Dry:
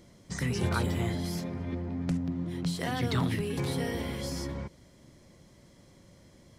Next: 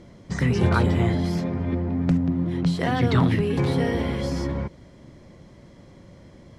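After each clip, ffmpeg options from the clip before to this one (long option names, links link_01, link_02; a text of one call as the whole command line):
ffmpeg -i in.wav -af "aemphasis=mode=reproduction:type=75fm,volume=8.5dB" out.wav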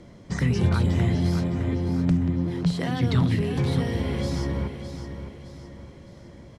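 ffmpeg -i in.wav -filter_complex "[0:a]acrossover=split=230|3000[link_01][link_02][link_03];[link_02]acompressor=threshold=-30dB:ratio=6[link_04];[link_01][link_04][link_03]amix=inputs=3:normalize=0,asplit=2[link_05][link_06];[link_06]aecho=0:1:611|1222|1833|2444|3055:0.335|0.141|0.0591|0.0248|0.0104[link_07];[link_05][link_07]amix=inputs=2:normalize=0" out.wav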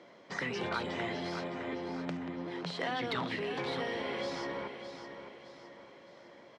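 ffmpeg -i in.wav -af "highpass=530,lowpass=3900,asoftclip=type=tanh:threshold=-22dB" out.wav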